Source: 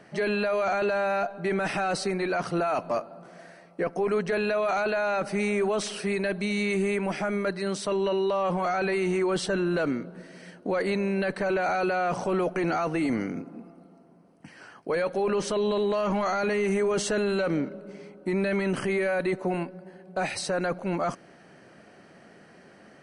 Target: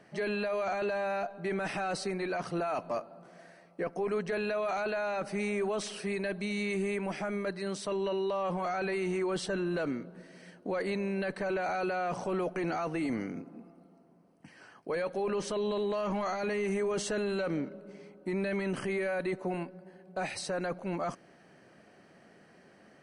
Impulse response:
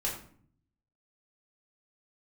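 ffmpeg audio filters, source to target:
-af "bandreject=f=1400:w=26,volume=0.501"

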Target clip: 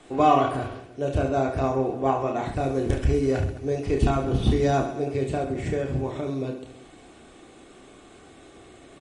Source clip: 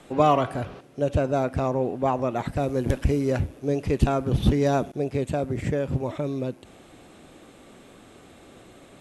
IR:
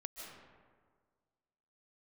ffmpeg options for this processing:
-af "aecho=1:1:2.7:0.35,aecho=1:1:30|72|130.8|213.1|328.4:0.631|0.398|0.251|0.158|0.1,volume=0.794" -ar 32000 -c:a libmp3lame -b:a 40k

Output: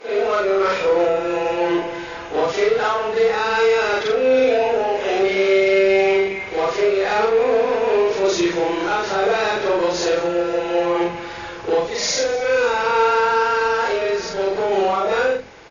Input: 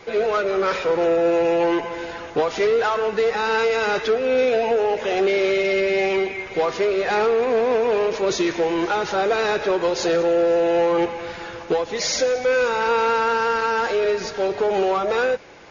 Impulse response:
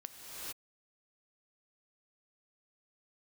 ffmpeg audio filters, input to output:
-filter_complex "[0:a]afftfilt=real='re':imag='-im':win_size=4096:overlap=0.75,acrossover=split=220[s0][s1];[s0]adelay=100[s2];[s2][s1]amix=inputs=2:normalize=0,aeval=exprs='0.266*(cos(1*acos(clip(val(0)/0.266,-1,1)))-cos(1*PI/2))+0.00168*(cos(5*acos(clip(val(0)/0.266,-1,1)))-cos(5*PI/2))':c=same,volume=2.11"

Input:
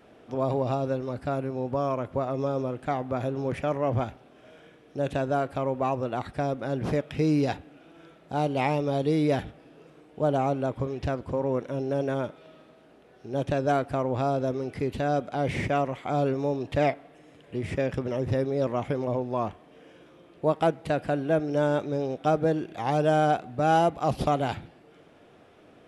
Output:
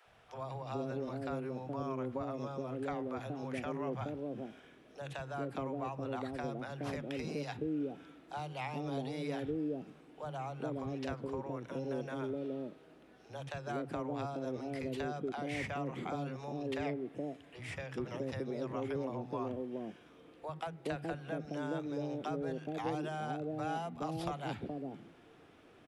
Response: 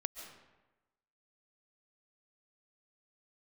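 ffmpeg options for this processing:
-filter_complex "[0:a]equalizer=f=600:t=o:w=0.28:g=-4,acrossover=split=140|340[s0][s1][s2];[s0]acompressor=threshold=0.00355:ratio=4[s3];[s1]acompressor=threshold=0.0178:ratio=4[s4];[s2]acompressor=threshold=0.0224:ratio=4[s5];[s3][s4][s5]amix=inputs=3:normalize=0,acrossover=split=160|590[s6][s7][s8];[s6]adelay=50[s9];[s7]adelay=420[s10];[s9][s10][s8]amix=inputs=3:normalize=0,volume=0.668"

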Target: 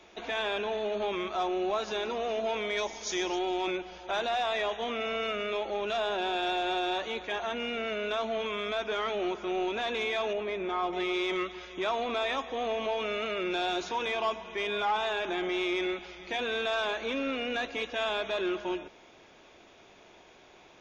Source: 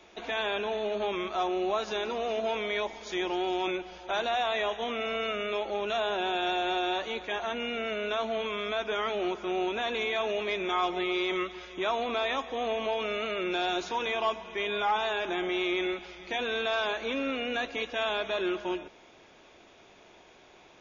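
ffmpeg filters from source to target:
-filter_complex "[0:a]asettb=1/sr,asplit=3[s0][s1][s2];[s0]atrim=end=10.334[s3];[s1]atrim=start=10.33:end=10.93,asetpts=PTS-STARTPTS,afade=t=in:d=0.004:c=qsin,afade=t=out:st=0.596:d=0.004:c=qsin,highshelf=f=2300:g=-12[s4];[s2]atrim=start=10.926[s5];[s3][s4]acrossfade=d=0.004:c1=hsin:c2=qsin[s6];[s6][s5]acrossfade=d=0.004:c1=qsin:c2=hsin,asoftclip=type=tanh:threshold=0.1,asettb=1/sr,asplit=3[s7][s8][s9];[s7]atrim=end=2.774[s10];[s8]atrim=start=2.77:end=3.39,asetpts=PTS-STARTPTS,afade=t=in:d=0.004:c=qsin,afade=t=out:st=0.616:d=0.004:c=qsin,equalizer=f=6000:t=o:w=0.76:g=13[s11];[s9]atrim=start=3.386[s12];[s10][s11]acrossfade=d=0.004:c1=hsin:c2=qsin[s13];[s13][s12]acrossfade=d=0.004:c1=qsin:c2=hsin"

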